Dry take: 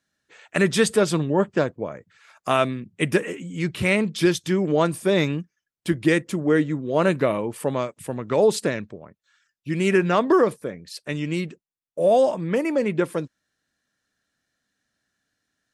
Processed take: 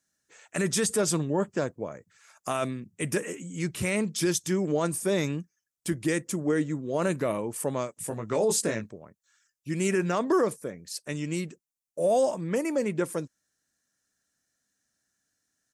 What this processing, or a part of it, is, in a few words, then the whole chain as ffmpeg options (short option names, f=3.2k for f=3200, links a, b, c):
over-bright horn tweeter: -filter_complex "[0:a]asplit=3[a][b][c];[a]afade=t=out:st=7.99:d=0.02[d];[b]asplit=2[e][f];[f]adelay=18,volume=-4.5dB[g];[e][g]amix=inputs=2:normalize=0,afade=t=in:st=7.99:d=0.02,afade=t=out:st=8.89:d=0.02[h];[c]afade=t=in:st=8.89:d=0.02[i];[d][h][i]amix=inputs=3:normalize=0,highshelf=f=4.9k:t=q:w=1.5:g=8.5,alimiter=limit=-11.5dB:level=0:latency=1:release=13,volume=-5dB"